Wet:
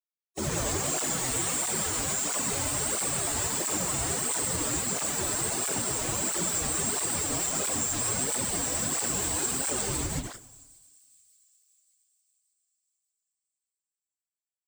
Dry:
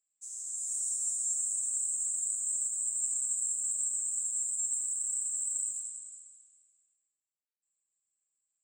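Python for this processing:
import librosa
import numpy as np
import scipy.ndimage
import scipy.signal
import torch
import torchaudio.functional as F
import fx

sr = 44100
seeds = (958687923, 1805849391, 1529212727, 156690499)

p1 = fx.high_shelf(x, sr, hz=11000.0, db=-10.5)
p2 = fx.hum_notches(p1, sr, base_hz=50, count=9)
p3 = fx.rider(p2, sr, range_db=5, speed_s=0.5)
p4 = p2 + F.gain(torch.from_numpy(p3), 2.5).numpy()
p5 = fx.schmitt(p4, sr, flips_db=-31.5)
p6 = fx.stretch_vocoder_free(p5, sr, factor=1.7)
p7 = fx.echo_wet_highpass(p6, sr, ms=584, feedback_pct=46, hz=5300.0, wet_db=-21)
p8 = fx.rev_spring(p7, sr, rt60_s=1.3, pass_ms=(35, 53), chirp_ms=45, drr_db=17.0)
p9 = fx.flanger_cancel(p8, sr, hz=1.5, depth_ms=5.9)
y = F.gain(torch.from_numpy(p9), 7.5).numpy()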